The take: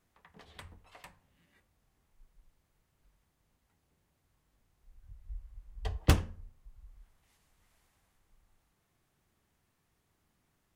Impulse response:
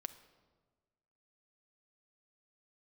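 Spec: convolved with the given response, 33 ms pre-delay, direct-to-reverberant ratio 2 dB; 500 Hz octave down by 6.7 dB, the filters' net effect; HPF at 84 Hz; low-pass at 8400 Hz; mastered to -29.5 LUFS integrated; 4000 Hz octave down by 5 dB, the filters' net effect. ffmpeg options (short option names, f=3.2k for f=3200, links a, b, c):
-filter_complex "[0:a]highpass=84,lowpass=8.4k,equalizer=f=500:t=o:g=-8.5,equalizer=f=4k:t=o:g=-6.5,asplit=2[a][b];[1:a]atrim=start_sample=2205,adelay=33[c];[b][c]afir=irnorm=-1:irlink=0,volume=1dB[d];[a][d]amix=inputs=2:normalize=0,volume=5.5dB"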